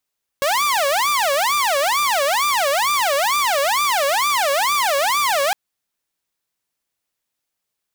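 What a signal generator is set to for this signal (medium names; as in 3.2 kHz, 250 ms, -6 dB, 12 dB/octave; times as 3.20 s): siren wail 551–1190 Hz 2.2 per s saw -13.5 dBFS 5.11 s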